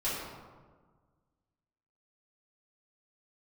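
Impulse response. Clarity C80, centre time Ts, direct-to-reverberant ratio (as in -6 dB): 2.0 dB, 93 ms, -11.5 dB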